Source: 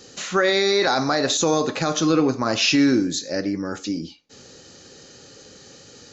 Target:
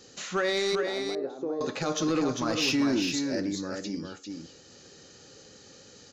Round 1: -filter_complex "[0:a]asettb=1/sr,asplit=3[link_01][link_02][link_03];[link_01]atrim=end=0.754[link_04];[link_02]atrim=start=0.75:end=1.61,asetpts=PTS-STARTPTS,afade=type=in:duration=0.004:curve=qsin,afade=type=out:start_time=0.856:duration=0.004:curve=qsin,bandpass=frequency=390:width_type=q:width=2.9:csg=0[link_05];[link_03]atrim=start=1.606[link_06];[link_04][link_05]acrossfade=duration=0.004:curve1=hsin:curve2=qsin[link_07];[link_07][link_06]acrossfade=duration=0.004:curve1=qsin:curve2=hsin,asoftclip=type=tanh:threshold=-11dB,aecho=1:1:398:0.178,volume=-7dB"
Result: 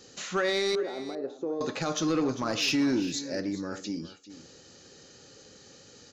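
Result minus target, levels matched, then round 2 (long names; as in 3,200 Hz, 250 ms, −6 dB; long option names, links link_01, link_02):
echo-to-direct −9.5 dB
-filter_complex "[0:a]asettb=1/sr,asplit=3[link_01][link_02][link_03];[link_01]atrim=end=0.754[link_04];[link_02]atrim=start=0.75:end=1.61,asetpts=PTS-STARTPTS,afade=type=in:duration=0.004:curve=qsin,afade=type=out:start_time=0.856:duration=0.004:curve=qsin,bandpass=frequency=390:width_type=q:width=2.9:csg=0[link_05];[link_03]atrim=start=1.606[link_06];[link_04][link_05]acrossfade=duration=0.004:curve1=hsin:curve2=qsin[link_07];[link_07][link_06]acrossfade=duration=0.004:curve1=qsin:curve2=hsin,asoftclip=type=tanh:threshold=-11dB,aecho=1:1:398:0.531,volume=-7dB"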